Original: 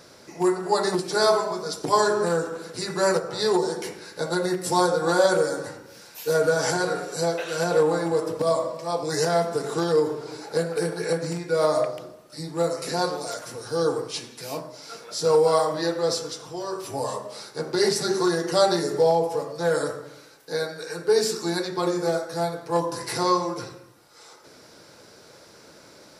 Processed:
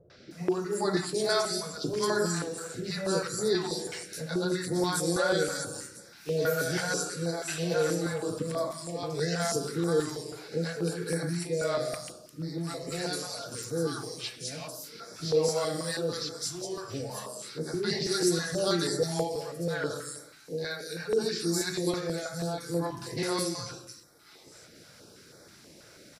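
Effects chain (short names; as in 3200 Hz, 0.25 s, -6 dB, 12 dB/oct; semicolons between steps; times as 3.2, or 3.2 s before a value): bell 960 Hz -9.5 dB 0.61 oct; three bands offset in time lows, mids, highs 0.1/0.31 s, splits 560/4900 Hz; dynamic EQ 650 Hz, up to -3 dB, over -37 dBFS, Q 1.2; stepped notch 6.2 Hz 250–2800 Hz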